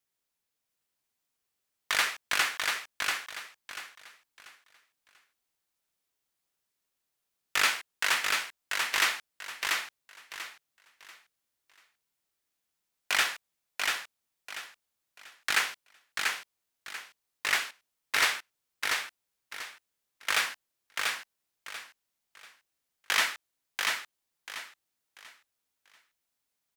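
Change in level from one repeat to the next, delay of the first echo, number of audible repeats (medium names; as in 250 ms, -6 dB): -11.0 dB, 689 ms, 3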